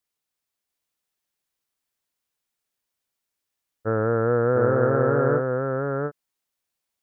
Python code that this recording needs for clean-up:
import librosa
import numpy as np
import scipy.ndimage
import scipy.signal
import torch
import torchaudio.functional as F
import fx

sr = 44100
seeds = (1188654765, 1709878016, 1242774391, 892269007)

y = fx.fix_echo_inverse(x, sr, delay_ms=700, level_db=-3.5)